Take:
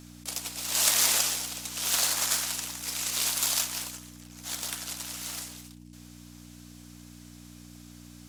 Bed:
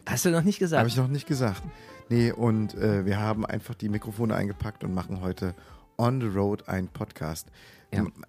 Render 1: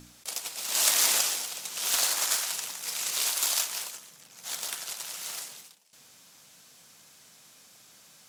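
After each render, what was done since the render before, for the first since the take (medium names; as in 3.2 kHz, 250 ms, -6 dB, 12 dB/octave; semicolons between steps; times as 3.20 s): de-hum 60 Hz, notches 5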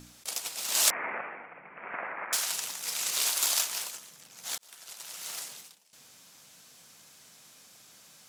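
0.90–2.33 s: steep low-pass 2.3 kHz 72 dB/octave; 4.58–5.47 s: fade in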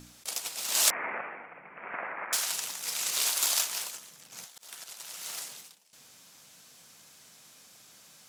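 4.32–4.84 s: compressor with a negative ratio -47 dBFS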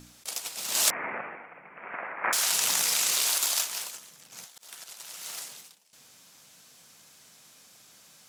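0.57–1.36 s: bass shelf 230 Hz +9.5 dB; 2.24–3.38 s: level flattener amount 100%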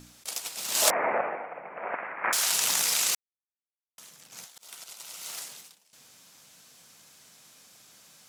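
0.82–1.95 s: peaking EQ 620 Hz +13.5 dB 1.6 oct; 3.15–3.98 s: mute; 4.58–5.31 s: band-stop 1.7 kHz, Q 8.2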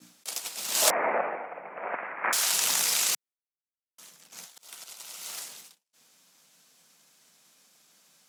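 expander -49 dBFS; steep high-pass 150 Hz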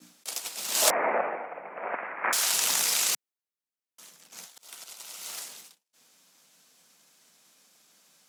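Bessel high-pass 200 Hz; bass shelf 350 Hz +4 dB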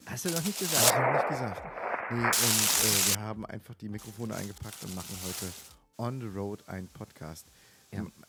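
add bed -10 dB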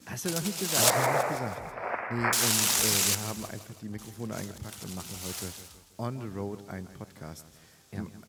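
feedback delay 163 ms, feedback 52%, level -14 dB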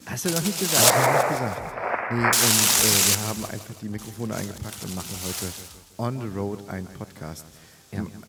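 trim +6.5 dB; peak limiter -1 dBFS, peak gain reduction 0.5 dB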